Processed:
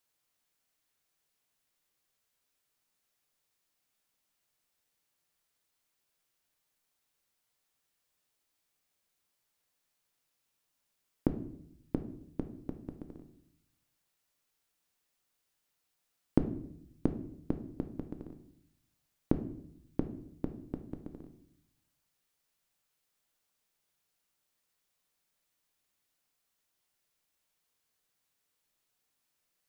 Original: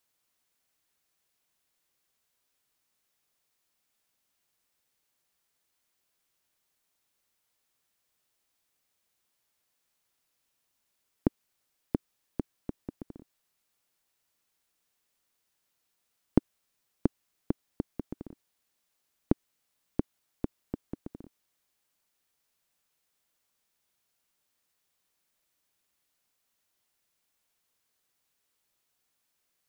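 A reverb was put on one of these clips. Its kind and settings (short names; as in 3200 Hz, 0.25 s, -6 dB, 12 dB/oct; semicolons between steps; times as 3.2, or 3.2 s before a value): shoebox room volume 150 m³, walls mixed, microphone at 0.42 m; gain -3 dB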